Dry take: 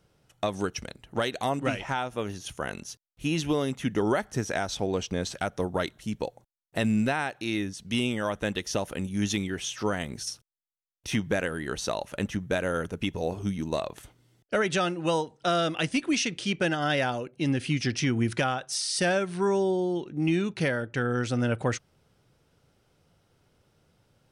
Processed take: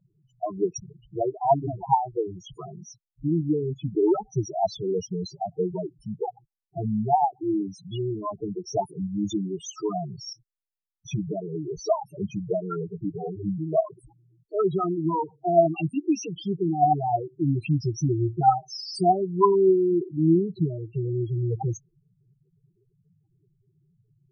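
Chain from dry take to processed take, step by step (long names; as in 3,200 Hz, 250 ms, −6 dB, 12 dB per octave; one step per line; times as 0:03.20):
phaser with its sweep stopped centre 360 Hz, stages 8
spectral peaks only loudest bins 4
auto-filter bell 3.2 Hz 560–2,400 Hz +14 dB
level +6 dB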